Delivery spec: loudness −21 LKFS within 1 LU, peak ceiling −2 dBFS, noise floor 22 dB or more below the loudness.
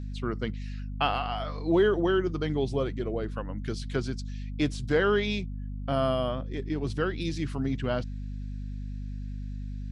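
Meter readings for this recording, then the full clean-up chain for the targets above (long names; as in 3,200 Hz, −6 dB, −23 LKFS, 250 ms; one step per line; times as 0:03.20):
mains hum 50 Hz; hum harmonics up to 250 Hz; level of the hum −33 dBFS; integrated loudness −30.0 LKFS; sample peak −11.5 dBFS; target loudness −21.0 LKFS
→ hum removal 50 Hz, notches 5
level +9 dB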